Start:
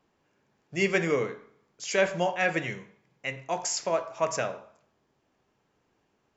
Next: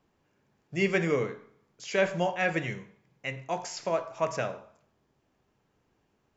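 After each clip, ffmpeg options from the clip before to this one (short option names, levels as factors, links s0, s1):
-filter_complex "[0:a]acrossover=split=5100[s0][s1];[s1]acompressor=threshold=0.00447:ratio=4:attack=1:release=60[s2];[s0][s2]amix=inputs=2:normalize=0,lowshelf=f=170:g=7.5,volume=0.794"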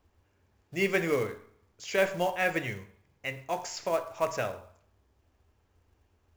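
-af "lowshelf=f=110:t=q:w=3:g=9,acrusher=bits=5:mode=log:mix=0:aa=0.000001"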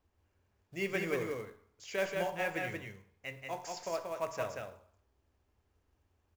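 -af "aecho=1:1:182:0.668,volume=0.398"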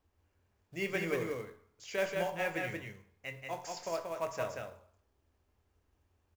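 -filter_complex "[0:a]asplit=2[s0][s1];[s1]adelay=24,volume=0.251[s2];[s0][s2]amix=inputs=2:normalize=0"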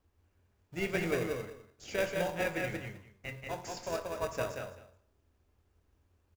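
-filter_complex "[0:a]asplit=2[s0][s1];[s1]acrusher=samples=41:mix=1:aa=0.000001,volume=0.501[s2];[s0][s2]amix=inputs=2:normalize=0,aecho=1:1:204:0.158"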